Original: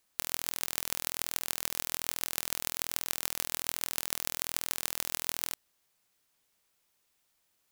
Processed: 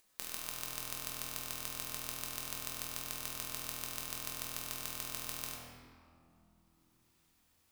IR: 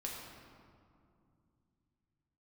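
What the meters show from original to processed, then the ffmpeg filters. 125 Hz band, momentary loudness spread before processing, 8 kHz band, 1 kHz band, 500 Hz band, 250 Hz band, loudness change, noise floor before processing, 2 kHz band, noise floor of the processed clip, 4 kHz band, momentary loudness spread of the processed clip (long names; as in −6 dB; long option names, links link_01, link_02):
+0.5 dB, 1 LU, −7.0 dB, −4.0 dB, −5.0 dB, −2.5 dB, −7.0 dB, −75 dBFS, −6.5 dB, −72 dBFS, −6.5 dB, 2 LU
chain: -filter_complex "[1:a]atrim=start_sample=2205[link_01];[0:a][link_01]afir=irnorm=-1:irlink=0,acompressor=mode=upward:threshold=-57dB:ratio=2.5,volume=-5dB"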